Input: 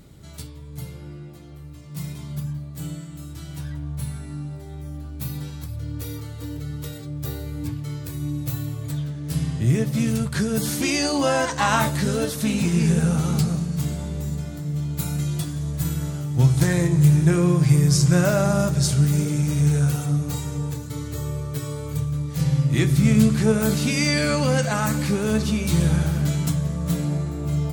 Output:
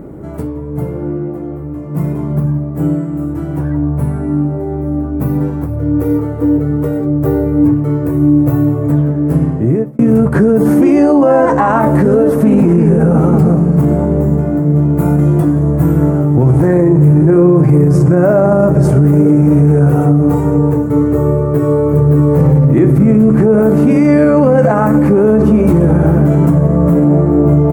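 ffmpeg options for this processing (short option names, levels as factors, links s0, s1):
-filter_complex "[0:a]asplit=2[s0][s1];[s1]afade=t=in:st=21.36:d=0.01,afade=t=out:st=22.11:d=0.01,aecho=0:1:570|1140|1710:0.749894|0.149979|0.0299958[s2];[s0][s2]amix=inputs=2:normalize=0,asplit=2[s3][s4];[s3]atrim=end=9.99,asetpts=PTS-STARTPTS,afade=t=out:st=9.16:d=0.83[s5];[s4]atrim=start=9.99,asetpts=PTS-STARTPTS,afade=t=in:d=0.004:c=hsin[s6];[s5][s6]concat=n=2:v=0:a=1,firequalizer=gain_entry='entry(100,0);entry(310,14);entry(3700,-25);entry(9300,-15);entry(16000,-10)':delay=0.05:min_phase=1,alimiter=level_in=4.22:limit=0.891:release=50:level=0:latency=1,volume=0.891"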